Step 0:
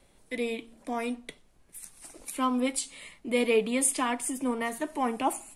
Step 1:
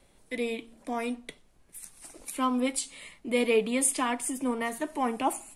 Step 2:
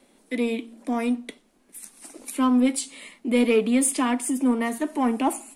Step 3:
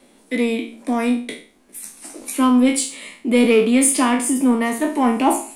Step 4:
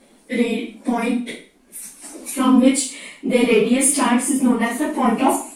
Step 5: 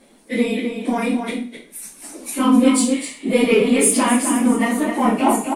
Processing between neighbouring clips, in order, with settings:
no processing that can be heard
low shelf with overshoot 160 Hz −13.5 dB, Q 3; in parallel at −6.5 dB: soft clipping −25 dBFS, distortion −9 dB
peak hold with a decay on every bin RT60 0.42 s; level +5 dB
random phases in long frames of 50 ms
slap from a distant wall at 44 metres, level −6 dB

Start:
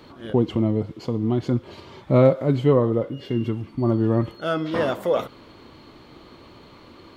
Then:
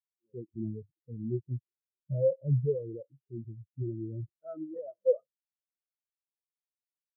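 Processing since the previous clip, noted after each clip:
parametric band 260 Hz −5.5 dB 0.3 octaves
brickwall limiter −17.5 dBFS, peak gain reduction 11 dB
every bin expanded away from the loudest bin 4 to 1
level +2 dB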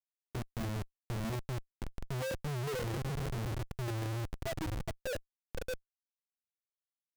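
phaser swept by the level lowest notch 170 Hz, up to 1,200 Hz, full sweep at −30.5 dBFS
feedback delay with all-pass diffusion 579 ms, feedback 51%, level −16 dB
comparator with hysteresis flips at −43.5 dBFS
level +1 dB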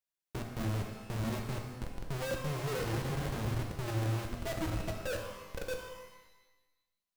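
reverb with rising layers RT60 1.1 s, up +12 semitones, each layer −8 dB, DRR 2.5 dB

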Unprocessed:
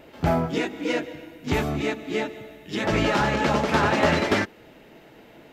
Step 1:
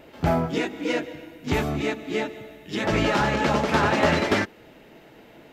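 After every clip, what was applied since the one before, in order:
no processing that can be heard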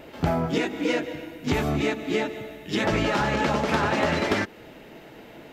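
downward compressor, threshold −24 dBFS, peak gain reduction 9 dB
level +4 dB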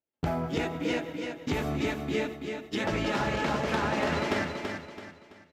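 noise gate −32 dBFS, range −46 dB
on a send: repeating echo 332 ms, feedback 36%, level −5.5 dB
on the sum: level −6 dB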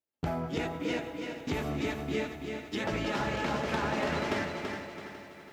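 feedback echo at a low word length 415 ms, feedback 55%, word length 9 bits, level −12 dB
level −3 dB

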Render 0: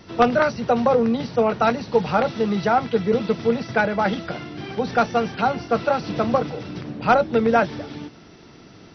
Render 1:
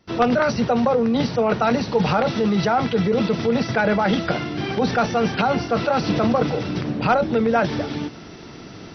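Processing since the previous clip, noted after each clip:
noise gate with hold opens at −37 dBFS
in parallel at +1.5 dB: compressor whose output falls as the input rises −24 dBFS, ratio −0.5
on the sum: level −2.5 dB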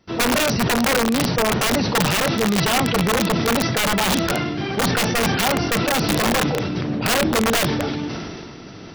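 wrap-around overflow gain 13 dB
level that may fall only so fast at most 26 dB per second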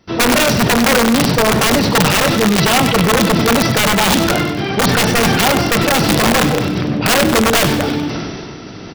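repeating echo 96 ms, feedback 46%, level −10.5 dB
level +6 dB

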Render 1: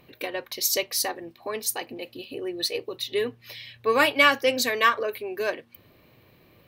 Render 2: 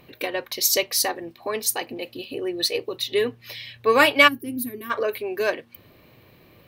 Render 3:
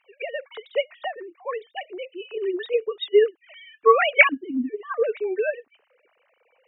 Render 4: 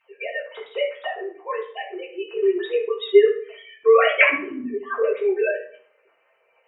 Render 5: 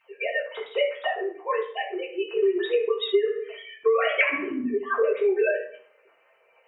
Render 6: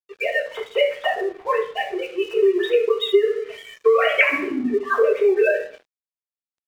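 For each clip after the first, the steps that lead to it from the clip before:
gain on a spectral selection 0:04.28–0:04.91, 410–8,900 Hz −26 dB; level +4 dB
three sine waves on the formant tracks
convolution reverb RT60 0.55 s, pre-delay 4 ms, DRR −5 dB; level −4 dB
downward compressor 12 to 1, threshold −20 dBFS, peak gain reduction 13 dB; level +2 dB
dead-zone distortion −49.5 dBFS; level +5.5 dB

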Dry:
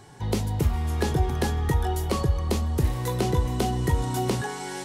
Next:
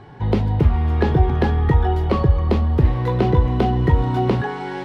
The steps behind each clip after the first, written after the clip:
high-frequency loss of the air 360 metres
level +8 dB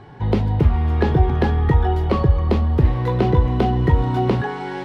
no processing that can be heard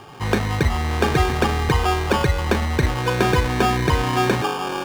sample-rate reduction 2,000 Hz, jitter 0%
mid-hump overdrive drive 11 dB, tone 3,000 Hz, clips at −4 dBFS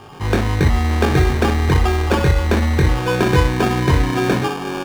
low-shelf EQ 350 Hz +4.5 dB
on a send: ambience of single reflections 22 ms −3 dB, 61 ms −8 dB
on the sum: level −1 dB

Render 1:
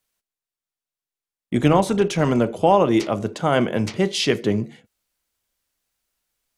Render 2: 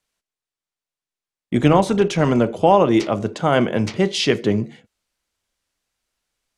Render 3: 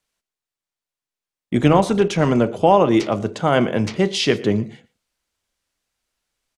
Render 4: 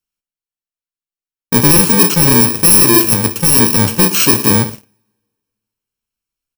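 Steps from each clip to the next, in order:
Bessel low-pass filter 7,800 Hz, order 2; level +2 dB
single-tap delay 115 ms −20.5 dB
samples in bit-reversed order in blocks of 64 samples; coupled-rooms reverb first 0.8 s, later 2.1 s, from −19 dB, DRR 15.5 dB; leveller curve on the samples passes 3; level −1 dB

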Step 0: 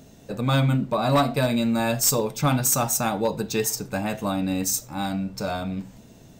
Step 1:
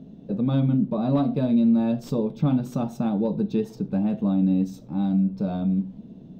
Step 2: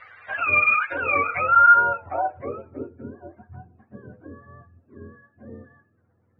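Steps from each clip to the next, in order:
drawn EQ curve 120 Hz 0 dB, 180 Hz +14 dB, 2,000 Hz −14 dB, 3,500 Hz −7 dB, 7,400 Hz −28 dB; in parallel at −1.5 dB: downward compressor, threshold −23 dBFS, peak gain reduction 12.5 dB; on the sum: level −8 dB
frequency axis turned over on the octave scale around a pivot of 570 Hz; low-pass filter sweep 2,600 Hz → 250 Hz, 0:01.23–0:03.05

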